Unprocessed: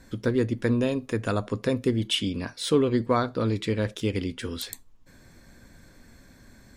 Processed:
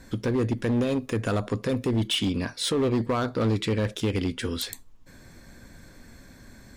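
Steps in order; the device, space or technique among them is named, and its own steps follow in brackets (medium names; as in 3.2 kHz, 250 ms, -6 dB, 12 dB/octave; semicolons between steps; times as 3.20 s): limiter into clipper (peak limiter -18 dBFS, peak gain reduction 7.5 dB; hard clipper -23.5 dBFS, distortion -15 dB); trim +3.5 dB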